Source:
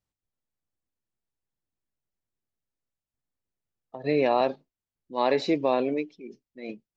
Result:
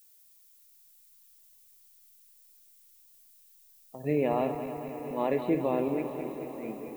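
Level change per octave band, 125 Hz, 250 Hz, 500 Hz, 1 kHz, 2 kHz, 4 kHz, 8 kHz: +3.0 dB, −1.0 dB, −4.0 dB, −5.5 dB, −7.5 dB, below −10 dB, can't be measured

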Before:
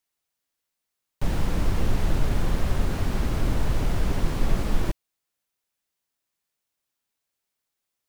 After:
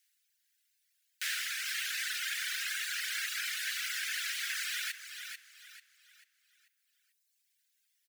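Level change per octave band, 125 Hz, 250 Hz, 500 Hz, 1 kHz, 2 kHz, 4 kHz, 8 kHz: below −40 dB, below −40 dB, below −40 dB, −14.0 dB, +5.5 dB, +6.0 dB, +6.0 dB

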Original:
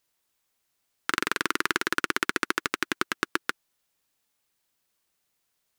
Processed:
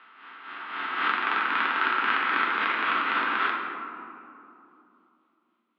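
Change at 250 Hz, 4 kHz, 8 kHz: −3.5 dB, −0.5 dB, below −30 dB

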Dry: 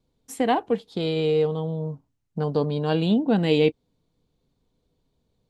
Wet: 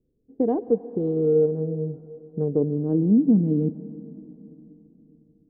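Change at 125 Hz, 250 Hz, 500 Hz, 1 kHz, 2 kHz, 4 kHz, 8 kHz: +1.0 dB, +3.0 dB, 0.0 dB, below −10 dB, below −30 dB, below −40 dB, can't be measured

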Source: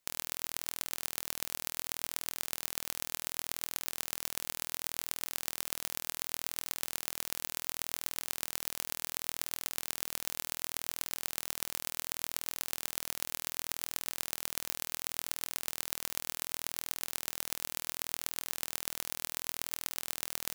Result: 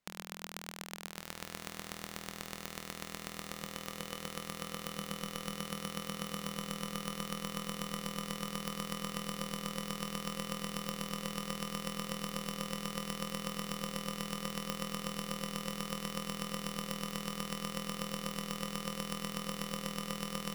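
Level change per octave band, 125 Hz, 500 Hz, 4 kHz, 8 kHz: +12.5, +7.5, −1.0, −7.5 decibels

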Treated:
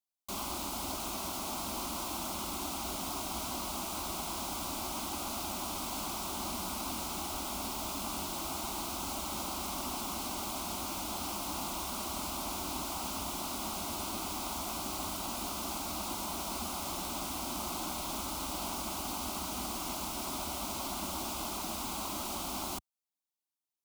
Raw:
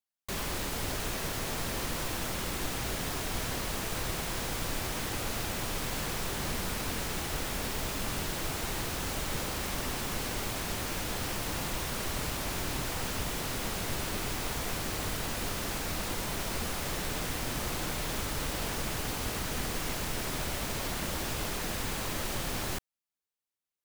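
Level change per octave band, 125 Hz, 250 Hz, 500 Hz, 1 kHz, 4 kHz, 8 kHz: −10.5, −2.5, −5.0, +1.0, −3.0, −1.5 decibels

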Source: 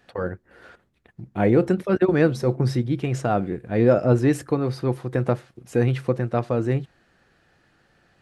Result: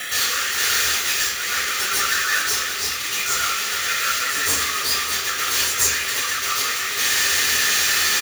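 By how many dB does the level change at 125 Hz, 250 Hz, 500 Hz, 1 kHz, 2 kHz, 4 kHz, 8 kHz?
−21.0, −20.0, −15.0, +5.5, +16.0, +26.0, +28.5 decibels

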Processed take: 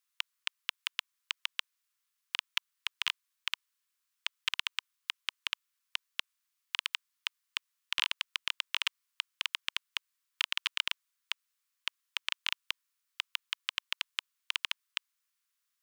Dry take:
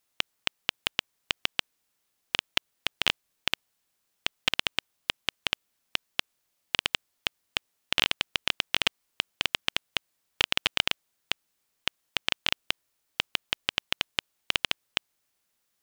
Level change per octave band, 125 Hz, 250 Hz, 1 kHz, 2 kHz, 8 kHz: below −40 dB, below −40 dB, −8.5 dB, −6.0 dB, −6.0 dB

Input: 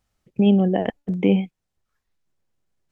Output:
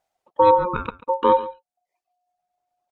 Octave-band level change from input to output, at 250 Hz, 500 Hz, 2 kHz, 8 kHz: −13.5 dB, +4.5 dB, +0.5 dB, can't be measured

